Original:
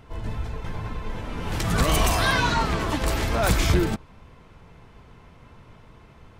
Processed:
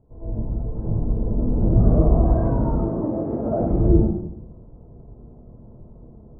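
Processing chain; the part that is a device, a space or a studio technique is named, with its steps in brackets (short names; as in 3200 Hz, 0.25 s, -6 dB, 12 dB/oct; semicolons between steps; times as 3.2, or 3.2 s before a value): 2.63–3.61 HPF 150 Hz 12 dB/oct; next room (LPF 660 Hz 24 dB/oct; reverb RT60 0.75 s, pre-delay 92 ms, DRR -12 dB); 0.84–1.88 low shelf 480 Hz +5.5 dB; gain -8.5 dB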